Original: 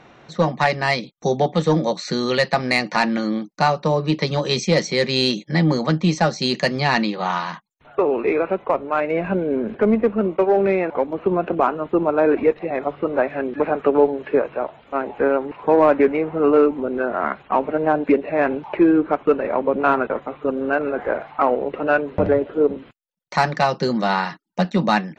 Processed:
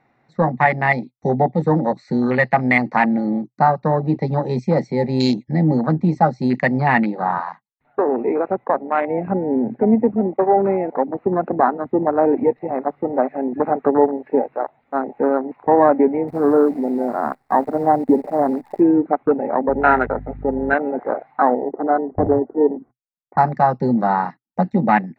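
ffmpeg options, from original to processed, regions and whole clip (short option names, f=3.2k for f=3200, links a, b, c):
-filter_complex "[0:a]asettb=1/sr,asplit=3[a][b][c];[a]atrim=end=16.284[d];[b]atrim=start=16.28:end=18.8,asetpts=PTS-STARTPTS,afade=t=in:d=0.004:c=qsin,afade=t=out:st=2.516:d=0.004:c=qsin,lowpass=f=1.3k:w=0.5412,lowpass=f=1.3k:w=1.3066,acrusher=bits=6:dc=4:mix=0:aa=0.000001[e];[c]atrim=start=18.796[f];[d][e]acrossfade=d=0.004:c1=hsin:c2=qsin[g];[g][f]acrossfade=d=0.004:c1=qsin:c2=hsin,asettb=1/sr,asplit=3[h][i][j];[h]atrim=end=19.694[k];[i]atrim=start=19.69:end=20.74,asetpts=PTS-STARTPTS,afade=t=in:d=0.004:c=qsin,afade=t=out:st=1.046:d=0.004:c=qsin,highpass=280,equalizer=f=410:t=q:w=4:g=3,equalizer=f=1.1k:t=q:w=4:g=8,equalizer=f=1.7k:t=q:w=4:g=8,lowpass=f=6.1k:w=0.5412,lowpass=f=6.1k:w=1.3066,aeval=exprs='val(0)+0.0251*(sin(2*PI*50*n/s)+sin(2*PI*2*50*n/s)/2+sin(2*PI*3*50*n/s)/3+sin(2*PI*4*50*n/s)/4+sin(2*PI*5*50*n/s)/5)':c=same,asuperstop=centerf=1100:order=4:qfactor=4.1[l];[j]atrim=start=20.736[m];[k][l]acrossfade=d=0.004:c1=hsin:c2=qsin[n];[n][m]acrossfade=d=0.004:c1=qsin:c2=hsin,asettb=1/sr,asplit=3[o][p][q];[o]atrim=end=21.624[r];[p]atrim=start=21.62:end=23.38,asetpts=PTS-STARTPTS,afade=t=in:d=0.004:c=qsin,afade=t=out:st=1.756:d=0.004:c=qsin,lowpass=f=1.2k:w=0.5412,lowpass=f=1.2k:w=1.3066,aecho=1:1:2.7:0.41,atrim=end_sample=77616[s];[q]atrim=start=23.376[t];[r][s]acrossfade=d=0.004:c1=hsin:c2=qsin[u];[u][t]acrossfade=d=0.004:c1=qsin:c2=hsin,afwtdn=0.0794,equalizer=f=125:t=o:w=0.33:g=8,equalizer=f=250:t=o:w=0.33:g=8,equalizer=f=800:t=o:w=0.33:g=8,equalizer=f=2k:t=o:w=0.33:g=9,equalizer=f=3.15k:t=o:w=0.33:g=-12,equalizer=f=6.3k:t=o:w=0.33:g=-8,volume=-1dB"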